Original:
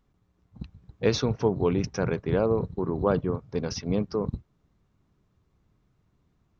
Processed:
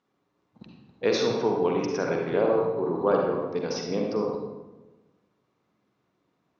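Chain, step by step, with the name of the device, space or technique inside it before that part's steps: supermarket ceiling speaker (BPF 290–6100 Hz; reverb RT60 1.2 s, pre-delay 42 ms, DRR -0.5 dB)

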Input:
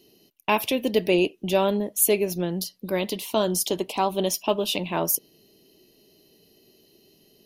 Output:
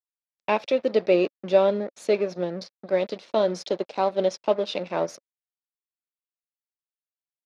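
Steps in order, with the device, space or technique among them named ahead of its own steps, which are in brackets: blown loudspeaker (crossover distortion -37 dBFS; speaker cabinet 190–4800 Hz, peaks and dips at 280 Hz -4 dB, 550 Hz +8 dB, 1000 Hz -3 dB, 3000 Hz -10 dB)

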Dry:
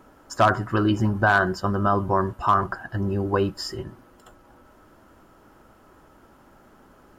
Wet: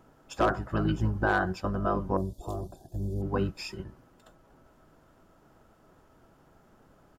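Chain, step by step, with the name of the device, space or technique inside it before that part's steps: 2.17–3.22 EQ curve 110 Hz 0 dB, 260 Hz -3 dB, 670 Hz 0 dB, 1400 Hz -30 dB, 3900 Hz -30 dB, 7200 Hz +11 dB; octave pedal (harmoniser -12 st -1 dB); gain -9 dB

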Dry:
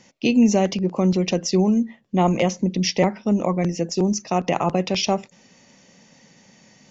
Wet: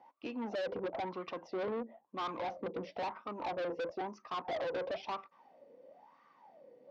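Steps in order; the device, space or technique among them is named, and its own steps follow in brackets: wah-wah guitar rig (wah 1 Hz 480–1200 Hz, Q 12; tube stage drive 46 dB, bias 0.35; speaker cabinet 82–4500 Hz, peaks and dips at 190 Hz -5 dB, 300 Hz +7 dB, 1800 Hz -3 dB, 2700 Hz -3 dB); gain +11.5 dB

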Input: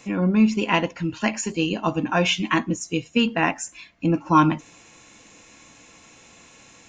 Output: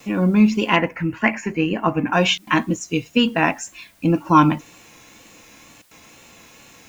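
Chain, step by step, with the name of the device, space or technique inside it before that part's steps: worn cassette (LPF 7100 Hz; wow and flutter; level dips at 2.38/5.82, 89 ms -29 dB; white noise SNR 36 dB); 0.76–2.13 resonant high shelf 2800 Hz -9.5 dB, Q 3; gain +3 dB

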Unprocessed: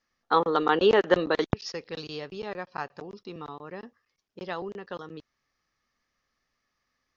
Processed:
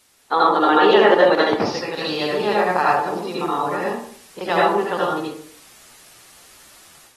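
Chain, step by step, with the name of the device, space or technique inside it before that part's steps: filmed off a television (BPF 280–6000 Hz; bell 850 Hz +5 dB 0.47 oct; reverb RT60 0.55 s, pre-delay 67 ms, DRR -5 dB; white noise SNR 33 dB; AGC gain up to 10.5 dB; AAC 32 kbps 44100 Hz)

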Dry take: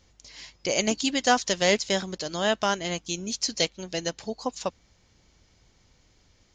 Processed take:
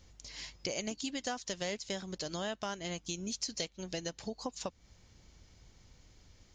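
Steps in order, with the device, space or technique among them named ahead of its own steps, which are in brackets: ASMR close-microphone chain (low shelf 170 Hz +6 dB; compressor 5:1, threshold -34 dBFS, peak gain reduction 17 dB; high shelf 8100 Hz +4.5 dB); gain -2 dB

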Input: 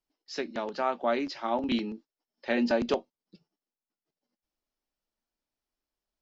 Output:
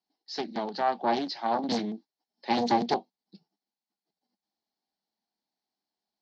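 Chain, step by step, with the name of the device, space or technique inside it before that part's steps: full-range speaker at full volume (Doppler distortion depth 0.99 ms; speaker cabinet 170–6100 Hz, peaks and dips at 200 Hz +8 dB, 550 Hz -6 dB, 780 Hz +10 dB, 1300 Hz -7 dB, 2600 Hz -6 dB, 4300 Hz +9 dB)

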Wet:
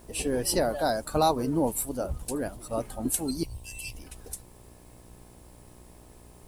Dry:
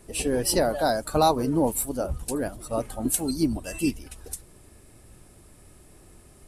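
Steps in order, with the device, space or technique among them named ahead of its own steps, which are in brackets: 3.43–3.95 elliptic band-stop 100–2500 Hz; video cassette with head-switching buzz (buzz 60 Hz, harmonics 18, -51 dBFS -4 dB/oct; white noise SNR 34 dB); gain -3 dB

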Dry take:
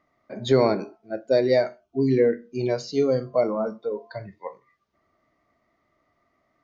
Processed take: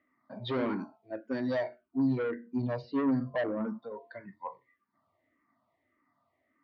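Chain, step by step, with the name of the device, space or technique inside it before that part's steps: 2.46–3.79 tilt shelf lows +4.5 dB, about 930 Hz; barber-pole phaser into a guitar amplifier (endless phaser -1.7 Hz; soft clip -21.5 dBFS, distortion -9 dB; speaker cabinet 92–4200 Hz, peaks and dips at 100 Hz +5 dB, 260 Hz +9 dB, 420 Hz -5 dB, 960 Hz +8 dB, 1800 Hz +5 dB); gain -5.5 dB

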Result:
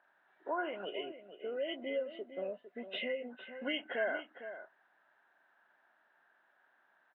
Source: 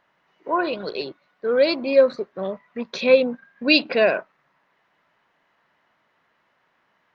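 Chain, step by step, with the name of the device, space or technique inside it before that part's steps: 1–1.53 air absorption 83 m; hearing aid with frequency lowering (nonlinear frequency compression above 1400 Hz 1.5:1; compressor 4:1, threshold -27 dBFS, peak gain reduction 15 dB; speaker cabinet 380–5200 Hz, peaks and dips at 480 Hz -7 dB, 760 Hz +3 dB, 1100 Hz -7 dB, 1600 Hz +8 dB, 2300 Hz -8 dB, 3700 Hz +3 dB); outdoor echo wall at 78 m, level -11 dB; 0.85–3.3 spectral gain 750–1900 Hz -12 dB; gain -4.5 dB

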